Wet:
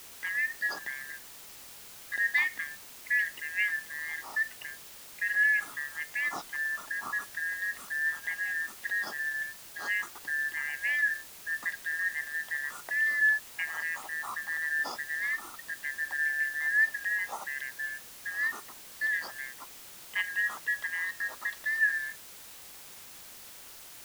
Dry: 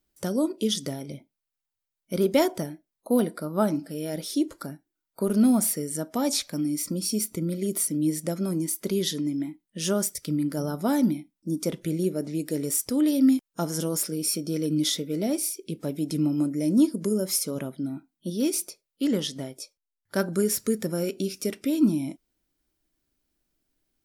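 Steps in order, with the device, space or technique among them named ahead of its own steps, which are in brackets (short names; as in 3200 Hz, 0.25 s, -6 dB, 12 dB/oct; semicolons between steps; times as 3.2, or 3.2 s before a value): split-band scrambled radio (four-band scrambler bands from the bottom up 4123; BPF 310–3000 Hz; white noise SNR 15 dB); gain -5.5 dB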